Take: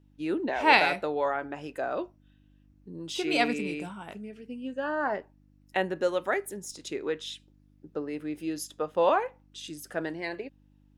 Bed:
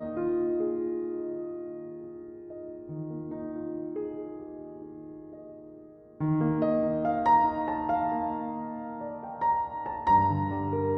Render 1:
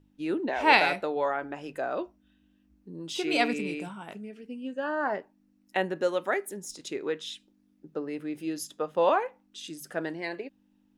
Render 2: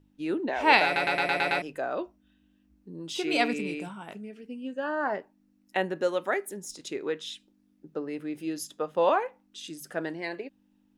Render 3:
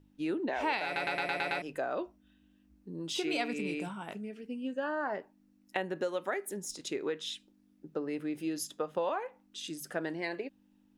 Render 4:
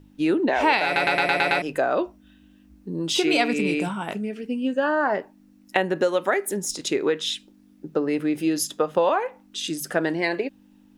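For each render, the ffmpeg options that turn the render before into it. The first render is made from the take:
-af "bandreject=f=50:t=h:w=4,bandreject=f=100:t=h:w=4,bandreject=f=150:t=h:w=4"
-filter_complex "[0:a]asplit=8[a][b][c][d][e][f][g][h];[a]atrim=end=0.962[i];[b]atrim=start=0.848:end=0.962[j];[c]atrim=start=0.848:end=0.962[k];[d]atrim=start=0.848:end=0.962[l];[e]atrim=start=0.848:end=0.962[m];[f]atrim=start=0.848:end=0.962[n];[g]atrim=start=0.848:end=0.962[o];[h]atrim=start=1.618[p];[i][j]acrossfade=d=0.004:c1=hsin:c2=hsin[q];[q][k]acrossfade=d=0.004:c1=hsin:c2=hsin[r];[r][l]acrossfade=d=0.004:c1=hsin:c2=hsin[s];[s][m]acrossfade=d=0.004:c1=hsin:c2=hsin[t];[t][n]acrossfade=d=0.004:c1=hsin:c2=hsin[u];[u][o]acrossfade=d=0.004:c1=hsin:c2=hsin[v];[v][p]acrossfade=d=0.004:c1=hsin:c2=hsin"
-af "acompressor=threshold=-30dB:ratio=5"
-af "volume=12dB"

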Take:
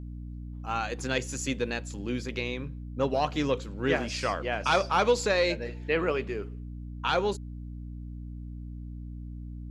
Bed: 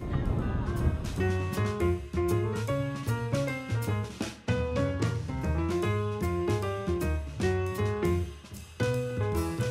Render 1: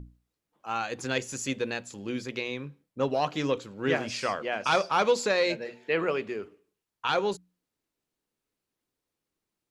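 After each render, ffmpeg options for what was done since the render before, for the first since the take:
-af "bandreject=f=60:t=h:w=6,bandreject=f=120:t=h:w=6,bandreject=f=180:t=h:w=6,bandreject=f=240:t=h:w=6,bandreject=f=300:t=h:w=6"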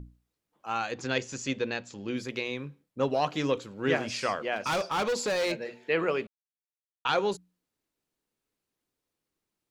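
-filter_complex "[0:a]asettb=1/sr,asplit=3[a][b][c];[a]atrim=end=0.914[d];[b]atrim=start=0.91:end=2.17,asetpts=PTS-STARTPTS,afade=t=in:d=0.004:c=qsin,afade=t=out:st=1.256:d=0.004:c=qsin,lowpass=f=6.5k:w=0.5412,lowpass=f=6.5k:w=1.3066[e];[c]atrim=start=2.166[f];[d][e]acrossfade=d=0.004:c1=hsin:c2=qsin[g];[g][f]acrossfade=d=0.004:c1=qsin:c2=hsin,asettb=1/sr,asplit=3[h][i][j];[h]atrim=end=4.564[k];[i]atrim=start=4.56:end=5.52,asetpts=PTS-STARTPTS,afade=t=in:d=0.004:c=qsin,afade=t=out:st=0.956:d=0.004:c=qsin,asoftclip=type=hard:threshold=-25dB[l];[j]atrim=start=5.516[m];[k][l]acrossfade=d=0.004:c1=hsin:c2=qsin[n];[n][m]acrossfade=d=0.004:c1=qsin:c2=hsin,asplit=3[o][p][q];[o]atrim=end=6.27,asetpts=PTS-STARTPTS,afade=t=out:st=6.266:d=0.004:c=hsin[r];[p]atrim=start=6.27:end=7.05,asetpts=PTS-STARTPTS,volume=0[s];[q]atrim=start=7.05,asetpts=PTS-STARTPTS,afade=t=in:d=0.004:c=hsin[t];[r][s][t]concat=n=3:v=0:a=1"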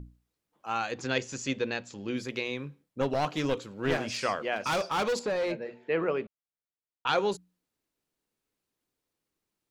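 -filter_complex "[0:a]asettb=1/sr,asplit=3[a][b][c];[a]atrim=end=3.014[d];[b]atrim=start=3.01:end=4.18,asetpts=PTS-STARTPTS,afade=t=in:d=0.004:c=qsin,afade=t=out:st=1.166:d=0.004:c=qsin,aeval=exprs='clip(val(0),-1,0.0398)':c=same[e];[c]atrim=start=4.176[f];[d][e]acrossfade=d=0.004:c1=hsin:c2=qsin[g];[g][f]acrossfade=d=0.004:c1=qsin:c2=hsin,asettb=1/sr,asplit=3[h][i][j];[h]atrim=end=5.194[k];[i]atrim=start=5.19:end=7.07,asetpts=PTS-STARTPTS,afade=t=in:d=0.004:c=qsin,afade=t=out:st=1.876:d=0.004:c=qsin,lowpass=f=1.4k:p=1[l];[j]atrim=start=7.066[m];[k][l]acrossfade=d=0.004:c1=hsin:c2=qsin[n];[n][m]acrossfade=d=0.004:c1=qsin:c2=hsin"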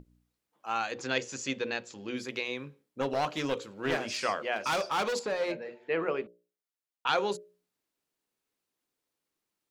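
-af "lowshelf=f=170:g=-10,bandreject=f=60:t=h:w=6,bandreject=f=120:t=h:w=6,bandreject=f=180:t=h:w=6,bandreject=f=240:t=h:w=6,bandreject=f=300:t=h:w=6,bandreject=f=360:t=h:w=6,bandreject=f=420:t=h:w=6,bandreject=f=480:t=h:w=6,bandreject=f=540:t=h:w=6,bandreject=f=600:t=h:w=6"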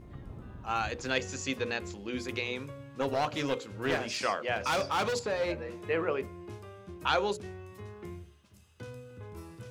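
-filter_complex "[1:a]volume=-16dB[a];[0:a][a]amix=inputs=2:normalize=0"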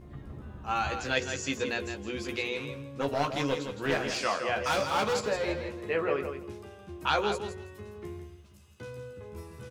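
-filter_complex "[0:a]asplit=2[a][b];[b]adelay=14,volume=-5.5dB[c];[a][c]amix=inputs=2:normalize=0,aecho=1:1:165|330|495:0.398|0.0677|0.0115"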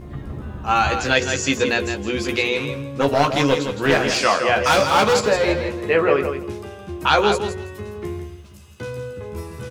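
-af "volume=12dB,alimiter=limit=-3dB:level=0:latency=1"

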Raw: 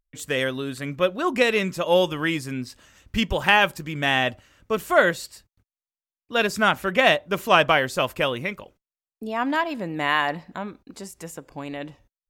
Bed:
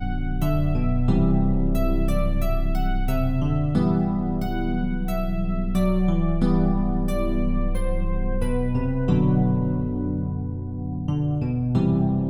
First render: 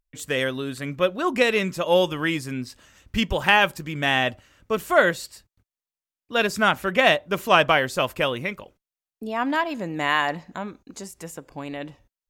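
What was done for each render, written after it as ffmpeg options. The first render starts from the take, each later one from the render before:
-filter_complex "[0:a]asettb=1/sr,asplit=3[a][b][c];[a]atrim=end=9.744[d];[b]atrim=start=9.74:end=11.03,asetpts=PTS-STARTPTS,afade=t=in:d=0.004:c=qsin,afade=t=out:st=1.286:d=0.004:c=qsin,equalizer=f=6.6k:w=6.8:g=13.5[e];[c]atrim=start=11.026[f];[d][e]acrossfade=d=0.004:c1=hsin:c2=qsin[g];[g][f]acrossfade=d=0.004:c1=qsin:c2=hsin"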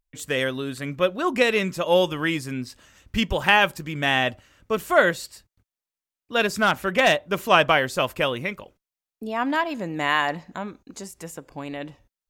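-filter_complex "[0:a]asettb=1/sr,asplit=3[a][b][c];[a]atrim=end=6.404[d];[b]atrim=start=6.4:end=7.25,asetpts=PTS-STARTPTS,afade=t=in:d=0.004:c=qsin,afade=t=out:st=0.846:d=0.004:c=qsin,volume=11dB,asoftclip=hard,volume=-11dB[e];[c]atrim=start=7.246[f];[d][e]acrossfade=d=0.004:c1=hsin:c2=qsin[g];[g][f]acrossfade=d=0.004:c1=qsin:c2=hsin"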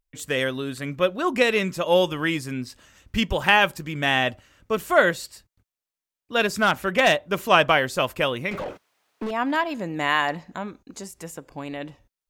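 -filter_complex "[0:a]asettb=1/sr,asplit=3[a][b][c];[a]atrim=end=8.514[d];[b]atrim=start=8.51:end=9.31,asetpts=PTS-STARTPTS,afade=t=in:d=0.004:c=qsin,afade=t=out:st=0.796:d=0.004:c=qsin,asplit=2[e][f];[f]highpass=f=720:p=1,volume=40dB,asoftclip=type=tanh:threshold=-21.5dB[g];[e][g]amix=inputs=2:normalize=0,lowpass=f=1.1k:p=1,volume=-6dB[h];[c]atrim=start=9.306[i];[d][h]acrossfade=d=0.004:c1=hsin:c2=qsin[j];[j][i]acrossfade=d=0.004:c1=qsin:c2=hsin"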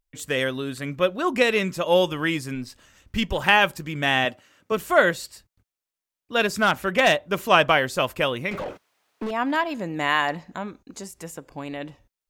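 -filter_complex "[0:a]asettb=1/sr,asplit=3[a][b][c];[a]atrim=end=2.554[d];[b]atrim=start=2.55:end=3.39,asetpts=PTS-STARTPTS,afade=t=in:d=0.004:c=qsin,afade=t=out:st=0.836:d=0.004:c=qsin,aeval=exprs='if(lt(val(0),0),0.708*val(0),val(0))':c=same[e];[c]atrim=start=3.386[f];[d][e]acrossfade=d=0.004:c1=hsin:c2=qsin[g];[g][f]acrossfade=d=0.004:c1=qsin:c2=hsin,asettb=1/sr,asplit=3[h][i][j];[h]atrim=end=4.254[k];[i]atrim=start=4.25:end=4.72,asetpts=PTS-STARTPTS,afade=t=in:d=0.004:c=qsin,afade=t=out:st=0.466:d=0.004:c=qsin,highpass=190[l];[j]atrim=start=4.716[m];[k][l]acrossfade=d=0.004:c1=hsin:c2=qsin[n];[n][m]acrossfade=d=0.004:c1=qsin:c2=hsin"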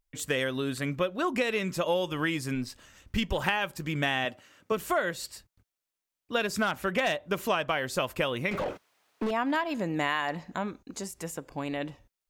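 -af "acompressor=threshold=-24dB:ratio=10"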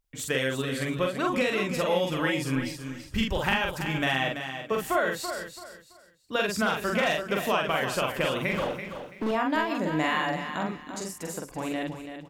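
-filter_complex "[0:a]asplit=2[a][b];[b]adelay=45,volume=-2.5dB[c];[a][c]amix=inputs=2:normalize=0,aecho=1:1:333|666|999:0.355|0.0993|0.0278"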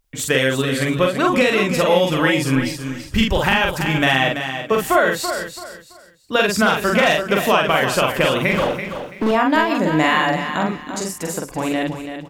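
-af "volume=10dB,alimiter=limit=-3dB:level=0:latency=1"

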